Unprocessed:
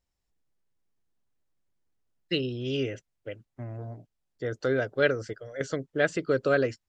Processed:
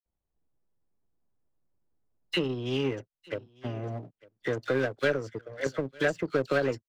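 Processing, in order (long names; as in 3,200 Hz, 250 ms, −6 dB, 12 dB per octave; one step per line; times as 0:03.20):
low-pass that shuts in the quiet parts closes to 990 Hz, open at −26 dBFS
in parallel at −5 dB: gain into a clipping stage and back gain 23.5 dB
on the sum: all-pass dispersion lows, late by 56 ms, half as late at 1,700 Hz
on a send: single-tap delay 900 ms −23 dB
on the sum: power curve on the samples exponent 1.4
multiband upward and downward compressor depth 70%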